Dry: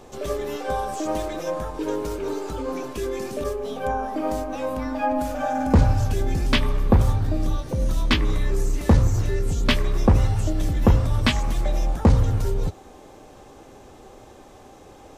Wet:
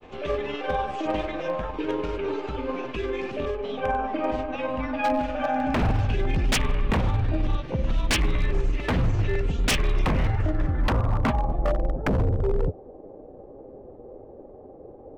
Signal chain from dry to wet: low-pass sweep 2.7 kHz -> 520 Hz, 10.02–11.90 s; granulator 100 ms, grains 20 per s, spray 19 ms, pitch spread up and down by 0 st; wavefolder -16 dBFS

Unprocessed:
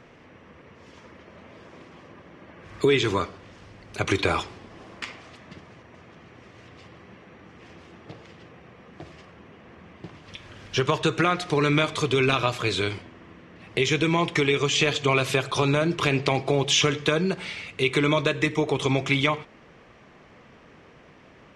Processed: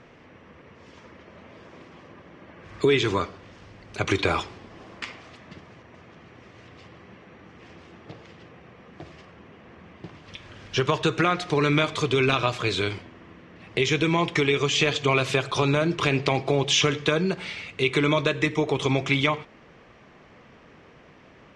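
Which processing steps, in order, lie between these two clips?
low-pass 7.8 kHz 12 dB/octave

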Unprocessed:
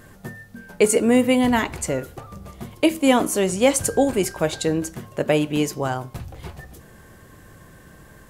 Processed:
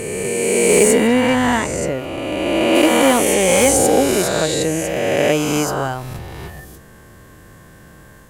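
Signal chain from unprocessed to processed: reverse spectral sustain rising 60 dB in 2.78 s; 1.07–2.75 s: treble shelf 6.9 kHz -10 dB; one-sided clip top -7.5 dBFS

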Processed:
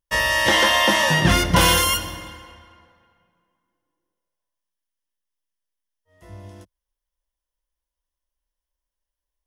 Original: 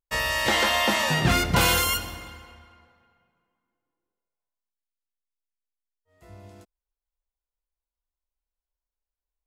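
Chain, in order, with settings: rippled EQ curve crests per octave 1.2, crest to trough 7 dB; trim +4 dB

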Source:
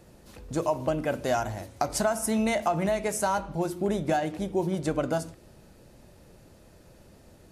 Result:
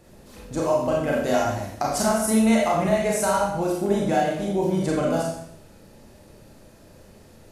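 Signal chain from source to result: Schroeder reverb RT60 0.68 s, combs from 28 ms, DRR -3.5 dB

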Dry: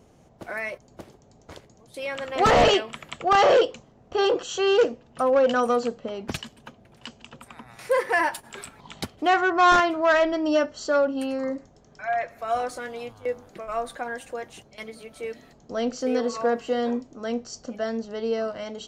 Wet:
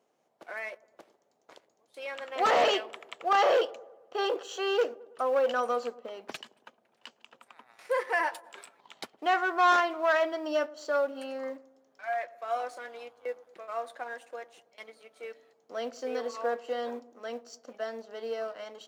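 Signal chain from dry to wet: companding laws mixed up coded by A; high-pass 450 Hz 12 dB/octave; treble shelf 6 kHz -7 dB; on a send: feedback echo behind a low-pass 109 ms, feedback 53%, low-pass 920 Hz, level -18.5 dB; on the sum: trim -4.5 dB

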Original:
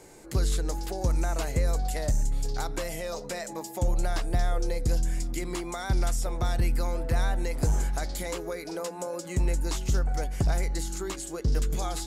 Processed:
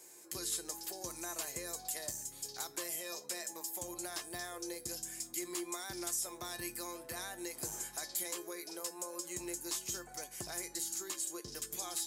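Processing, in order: high-pass 81 Hz 12 dB/octave; RIAA curve recording; feedback comb 350 Hz, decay 0.22 s, harmonics odd, mix 80%; trim +1 dB

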